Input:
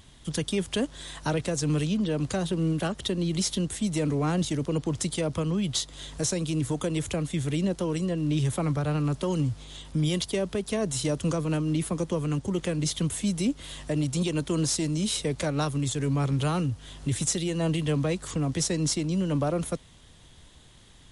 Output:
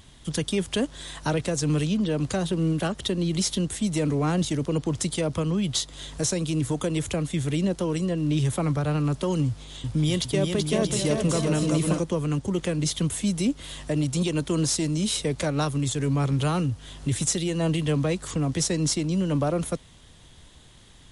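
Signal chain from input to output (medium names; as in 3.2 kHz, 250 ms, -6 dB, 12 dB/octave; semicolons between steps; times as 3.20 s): 9.46–11.99 s: bouncing-ball echo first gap 380 ms, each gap 0.65×, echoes 5; trim +2 dB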